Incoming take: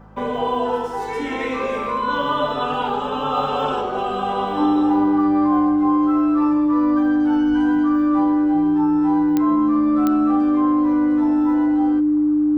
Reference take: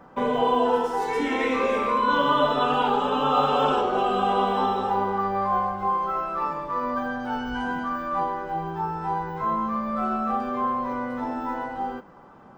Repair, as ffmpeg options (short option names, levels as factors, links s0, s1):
-af "adeclick=t=4,bandreject=f=52.4:t=h:w=4,bandreject=f=104.8:t=h:w=4,bandreject=f=157.2:t=h:w=4,bandreject=f=209.6:t=h:w=4,bandreject=f=300:w=30"